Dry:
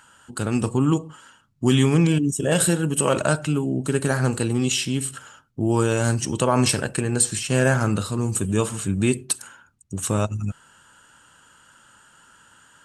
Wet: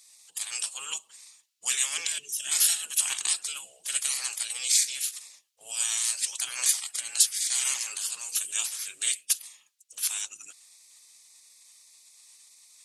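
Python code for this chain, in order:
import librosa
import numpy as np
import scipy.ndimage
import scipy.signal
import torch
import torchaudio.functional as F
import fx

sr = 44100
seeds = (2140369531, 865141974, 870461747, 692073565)

y = fx.weighting(x, sr, curve='D')
y = fx.spec_gate(y, sr, threshold_db=-15, keep='weak')
y = F.preemphasis(torch.from_numpy(y), 0.97).numpy()
y = y * librosa.db_to_amplitude(3.5)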